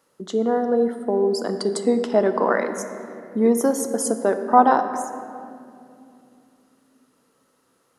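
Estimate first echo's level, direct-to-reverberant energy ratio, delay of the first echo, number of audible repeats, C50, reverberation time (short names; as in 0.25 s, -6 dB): none, 7.5 dB, none, none, 8.5 dB, 2.5 s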